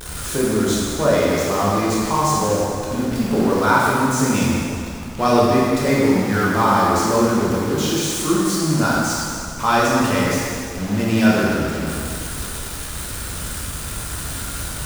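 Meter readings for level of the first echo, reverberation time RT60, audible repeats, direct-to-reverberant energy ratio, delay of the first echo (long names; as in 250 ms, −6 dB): no echo audible, 2.3 s, no echo audible, −6.5 dB, no echo audible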